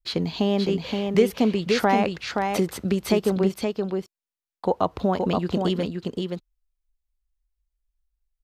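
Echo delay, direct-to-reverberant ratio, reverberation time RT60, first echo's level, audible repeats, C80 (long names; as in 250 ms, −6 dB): 523 ms, no reverb audible, no reverb audible, −4.5 dB, 1, no reverb audible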